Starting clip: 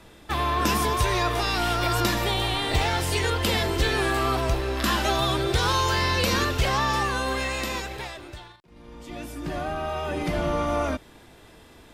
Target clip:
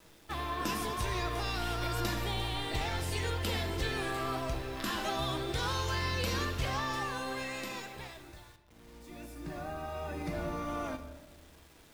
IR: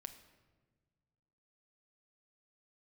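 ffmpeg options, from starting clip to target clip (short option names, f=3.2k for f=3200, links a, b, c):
-filter_complex "[0:a]asettb=1/sr,asplit=3[a][b][c];[a]atrim=end=8.214[d];[b]atrim=start=8.21:end=10.67,asetpts=PTS-STARTPTS,afade=t=in:d=0.004:c=qsin,afade=t=out:st=2.456:d=0.004:c=qsin,bandreject=f=3.1k:w=5.6[e];[c]atrim=start=10.666[f];[d][e]acrossfade=d=0.004:c1=hsin:c2=qsin[g];[g][f]acrossfade=d=0.004:c1=qsin:c2=hsin,acrusher=bits=7:mix=0:aa=0.000001[h];[1:a]atrim=start_sample=2205[i];[h][i]afir=irnorm=-1:irlink=0,volume=-5.5dB"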